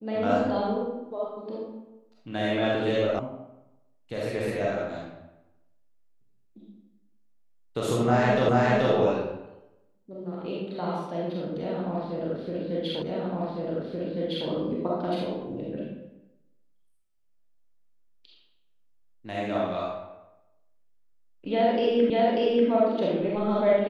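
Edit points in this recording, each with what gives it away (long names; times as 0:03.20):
0:03.19: cut off before it has died away
0:08.49: the same again, the last 0.43 s
0:13.02: the same again, the last 1.46 s
0:22.10: the same again, the last 0.59 s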